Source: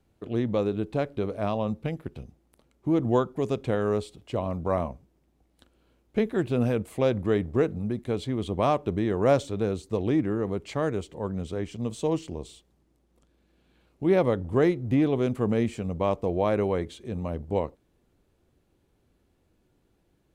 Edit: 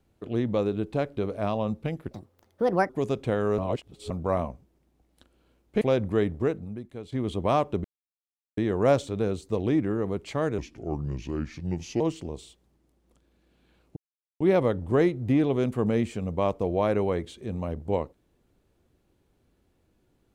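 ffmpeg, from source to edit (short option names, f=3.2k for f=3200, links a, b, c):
-filter_complex "[0:a]asplit=11[a][b][c][d][e][f][g][h][i][j][k];[a]atrim=end=2.114[l];[b]atrim=start=2.11:end=3.3,asetpts=PTS-STARTPTS,asetrate=67032,aresample=44100[m];[c]atrim=start=3.296:end=3.992[n];[d]atrim=start=3.988:end=4.512,asetpts=PTS-STARTPTS,areverse[o];[e]atrim=start=4.508:end=6.222[p];[f]atrim=start=6.948:end=8.26,asetpts=PTS-STARTPTS,afade=t=out:st=0.502:d=0.81:c=qua:silence=0.266073[q];[g]atrim=start=8.26:end=8.98,asetpts=PTS-STARTPTS,afade=t=in:d=0.004:c=hsin:silence=0.266073,afade=t=out:st=0.716:d=0.004:c=hsin,apad=pad_dur=0.73[r];[h]atrim=start=8.98:end=10.994,asetpts=PTS-STARTPTS,afade=t=in:d=0.004:c=hsin[s];[i]atrim=start=10.99:end=12.07,asetpts=PTS-STARTPTS,asetrate=33516,aresample=44100,atrim=end_sample=62668,asetpts=PTS-STARTPTS[t];[j]atrim=start=12.066:end=14.03,asetpts=PTS-STARTPTS,afade=t=out:st=1.96:d=0.004:c=hsin,apad=pad_dur=0.44[u];[k]atrim=start=14.03,asetpts=PTS-STARTPTS,afade=t=in:d=0.004:c=hsin[v];[l][m]acrossfade=d=0.004:c1=hsin:c2=hsin[w];[w][n]acrossfade=d=0.004:c1=hsin:c2=hsin[x];[x][o]acrossfade=d=0.004:c1=hsin:c2=hsin[y];[y][p]acrossfade=d=0.004:c1=hsin:c2=hsin[z];[q][r][s]concat=n=3:v=0:a=1[aa];[z][aa]acrossfade=d=0.004:c1=hsin:c2=hsin[ab];[ab][t]acrossfade=d=0.004:c1=hsin:c2=hsin[ac];[u][v]concat=n=2:v=0:a=1[ad];[ac][ad]acrossfade=d=0.004:c1=hsin:c2=hsin"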